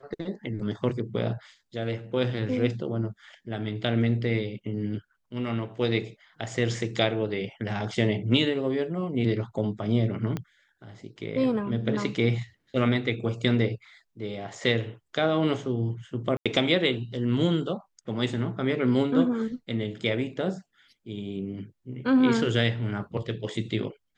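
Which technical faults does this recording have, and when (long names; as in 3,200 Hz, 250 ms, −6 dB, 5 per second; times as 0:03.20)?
0:10.37: click −18 dBFS
0:16.37–0:16.46: drop-out 86 ms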